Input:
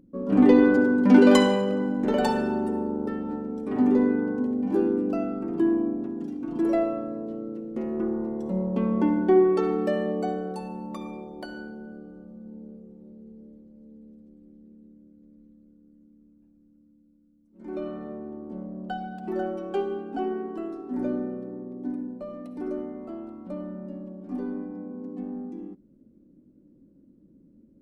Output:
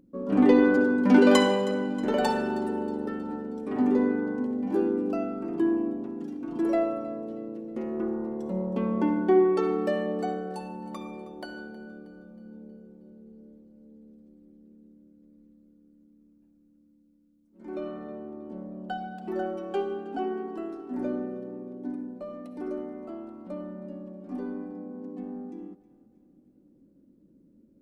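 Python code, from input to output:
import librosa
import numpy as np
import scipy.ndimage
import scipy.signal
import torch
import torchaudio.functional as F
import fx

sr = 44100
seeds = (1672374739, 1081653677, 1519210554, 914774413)

y = fx.low_shelf(x, sr, hz=250.0, db=-6.0)
y = fx.echo_thinned(y, sr, ms=317, feedback_pct=49, hz=420.0, wet_db=-18.0)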